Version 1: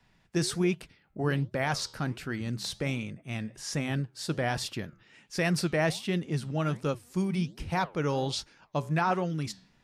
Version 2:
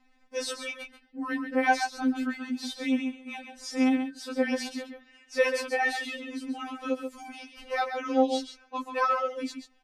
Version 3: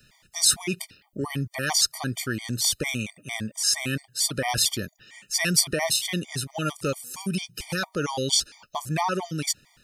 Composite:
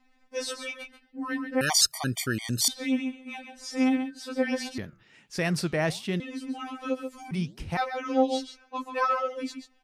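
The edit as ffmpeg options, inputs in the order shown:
-filter_complex "[0:a]asplit=2[a][b];[1:a]asplit=4[c][d][e][f];[c]atrim=end=1.612[g];[2:a]atrim=start=1.608:end=2.682[h];[d]atrim=start=2.678:end=4.782[i];[a]atrim=start=4.778:end=6.202[j];[e]atrim=start=6.198:end=7.312[k];[b]atrim=start=7.308:end=7.772[l];[f]atrim=start=7.768[m];[g][h]acrossfade=d=0.004:c1=hsin:c2=hsin[n];[n][i]acrossfade=d=0.004:c1=hsin:c2=hsin[o];[o][j]acrossfade=d=0.004:c1=hsin:c2=hsin[p];[p][k]acrossfade=d=0.004:c1=hsin:c2=hsin[q];[q][l]acrossfade=d=0.004:c1=hsin:c2=hsin[r];[r][m]acrossfade=d=0.004:c1=hsin:c2=hsin"

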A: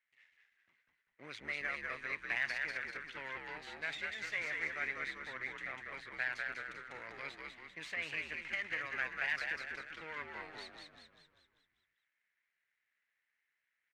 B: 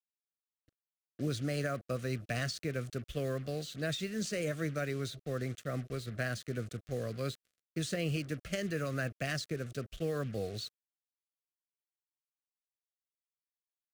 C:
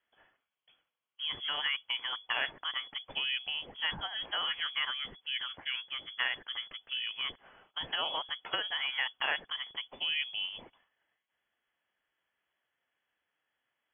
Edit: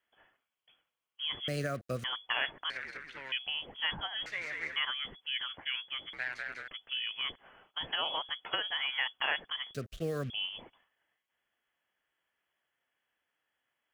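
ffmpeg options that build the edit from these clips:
-filter_complex "[1:a]asplit=2[a][b];[0:a]asplit=3[c][d][e];[2:a]asplit=6[f][g][h][i][j][k];[f]atrim=end=1.482[l];[a]atrim=start=1.478:end=2.042[m];[g]atrim=start=2.038:end=2.702[n];[c]atrim=start=2.698:end=3.322[o];[h]atrim=start=3.318:end=4.262[p];[d]atrim=start=4.258:end=4.762[q];[i]atrim=start=4.758:end=6.132[r];[e]atrim=start=6.128:end=6.682[s];[j]atrim=start=6.678:end=9.742[t];[b]atrim=start=9.738:end=10.302[u];[k]atrim=start=10.298[v];[l][m]acrossfade=d=0.004:c1=hsin:c2=hsin[w];[w][n]acrossfade=d=0.004:c1=hsin:c2=hsin[x];[x][o]acrossfade=d=0.004:c1=hsin:c2=hsin[y];[y][p]acrossfade=d=0.004:c1=hsin:c2=hsin[z];[z][q]acrossfade=d=0.004:c1=hsin:c2=hsin[aa];[aa][r]acrossfade=d=0.004:c1=hsin:c2=hsin[ab];[ab][s]acrossfade=d=0.004:c1=hsin:c2=hsin[ac];[ac][t]acrossfade=d=0.004:c1=hsin:c2=hsin[ad];[ad][u]acrossfade=d=0.004:c1=hsin:c2=hsin[ae];[ae][v]acrossfade=d=0.004:c1=hsin:c2=hsin"

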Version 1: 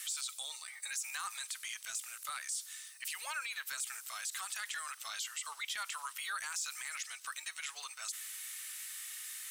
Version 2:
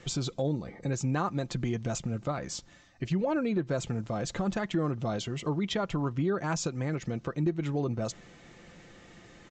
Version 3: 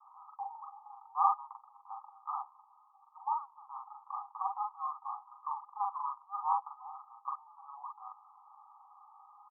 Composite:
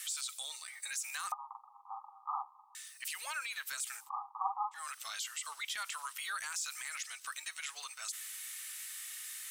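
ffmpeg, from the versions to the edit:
-filter_complex "[2:a]asplit=2[a][b];[0:a]asplit=3[c][d][e];[c]atrim=end=1.322[f];[a]atrim=start=1.318:end=2.752[g];[d]atrim=start=2.748:end=4.1[h];[b]atrim=start=3.94:end=4.87[i];[e]atrim=start=4.71[j];[f][g]acrossfade=d=0.004:c1=hsin:c2=hsin[k];[k][h]acrossfade=d=0.004:c1=hsin:c2=hsin[l];[l][i]acrossfade=d=0.16:c1=tri:c2=tri[m];[m][j]acrossfade=d=0.16:c1=tri:c2=tri"

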